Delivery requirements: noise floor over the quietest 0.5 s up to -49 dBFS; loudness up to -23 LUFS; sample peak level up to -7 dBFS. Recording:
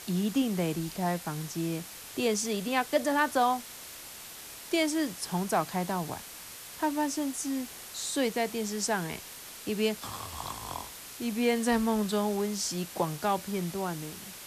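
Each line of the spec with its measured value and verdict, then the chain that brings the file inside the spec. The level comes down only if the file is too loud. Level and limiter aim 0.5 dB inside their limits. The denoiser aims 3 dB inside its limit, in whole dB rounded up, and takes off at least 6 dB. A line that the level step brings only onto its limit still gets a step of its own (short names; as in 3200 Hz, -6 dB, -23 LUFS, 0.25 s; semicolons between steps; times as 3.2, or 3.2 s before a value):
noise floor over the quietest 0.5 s -45 dBFS: fail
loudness -31.0 LUFS: OK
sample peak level -14.5 dBFS: OK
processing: denoiser 7 dB, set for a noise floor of -45 dBFS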